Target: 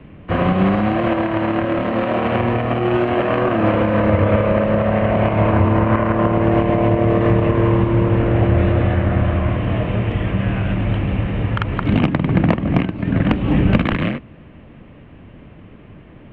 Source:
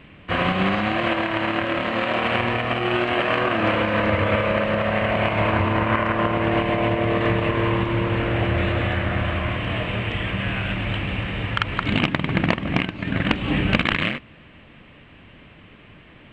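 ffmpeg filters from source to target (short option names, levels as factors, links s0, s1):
-filter_complex "[0:a]tiltshelf=f=1400:g=9,acrossover=split=240|370|2300[s0][s1][s2][s3];[s1]asoftclip=type=hard:threshold=0.0841[s4];[s0][s4][s2][s3]amix=inputs=4:normalize=0,volume=0.891"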